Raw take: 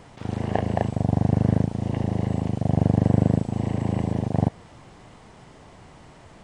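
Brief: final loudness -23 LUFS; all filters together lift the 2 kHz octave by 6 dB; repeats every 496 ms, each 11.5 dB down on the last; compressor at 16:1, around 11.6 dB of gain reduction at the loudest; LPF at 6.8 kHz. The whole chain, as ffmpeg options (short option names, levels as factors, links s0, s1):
-af "lowpass=6800,equalizer=f=2000:t=o:g=7,acompressor=threshold=0.0562:ratio=16,aecho=1:1:496|992|1488:0.266|0.0718|0.0194,volume=2.82"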